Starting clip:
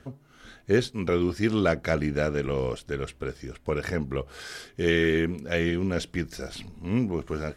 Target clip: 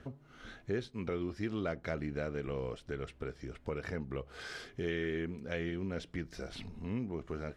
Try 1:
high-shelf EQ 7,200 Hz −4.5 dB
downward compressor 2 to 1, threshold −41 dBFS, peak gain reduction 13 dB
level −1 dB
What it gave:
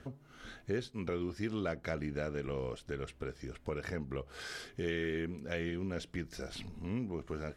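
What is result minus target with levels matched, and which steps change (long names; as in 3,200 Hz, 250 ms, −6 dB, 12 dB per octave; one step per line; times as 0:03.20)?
8,000 Hz band +4.0 dB
change: high-shelf EQ 7,200 Hz −14.5 dB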